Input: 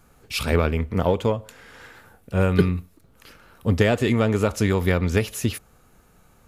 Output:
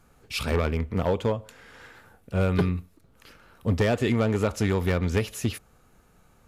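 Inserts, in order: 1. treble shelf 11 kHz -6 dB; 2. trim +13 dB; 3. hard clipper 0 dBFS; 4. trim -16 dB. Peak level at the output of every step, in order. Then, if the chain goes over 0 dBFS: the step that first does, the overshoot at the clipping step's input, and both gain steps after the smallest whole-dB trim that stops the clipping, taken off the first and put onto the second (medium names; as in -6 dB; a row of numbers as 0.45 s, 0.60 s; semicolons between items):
-3.5 dBFS, +9.5 dBFS, 0.0 dBFS, -16.0 dBFS; step 2, 9.5 dB; step 2 +3 dB, step 4 -6 dB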